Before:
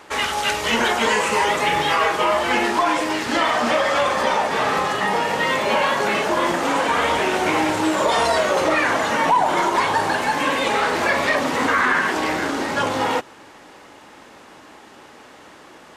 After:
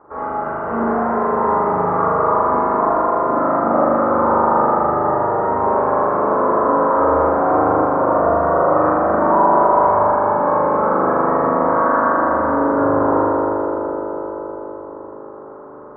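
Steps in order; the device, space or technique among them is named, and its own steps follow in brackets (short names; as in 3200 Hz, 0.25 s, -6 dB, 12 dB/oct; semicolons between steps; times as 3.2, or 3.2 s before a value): elliptic low-pass 1300 Hz, stop band 70 dB; dub delay into a spring reverb (darkening echo 0.255 s, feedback 76%, low-pass 2000 Hz, level -7 dB; spring tank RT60 3.2 s, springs 39 ms, chirp 55 ms, DRR -7.5 dB); gain -3.5 dB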